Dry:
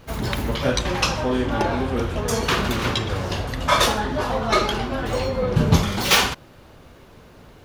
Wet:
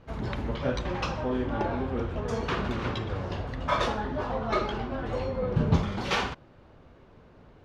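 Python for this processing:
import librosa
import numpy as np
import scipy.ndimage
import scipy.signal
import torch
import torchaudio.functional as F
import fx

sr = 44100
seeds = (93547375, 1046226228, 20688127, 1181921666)

y = scipy.signal.sosfilt(scipy.signal.butter(2, 6100.0, 'lowpass', fs=sr, output='sos'), x)
y = fx.high_shelf(y, sr, hz=2800.0, db=-12.0)
y = y * 10.0 ** (-6.5 / 20.0)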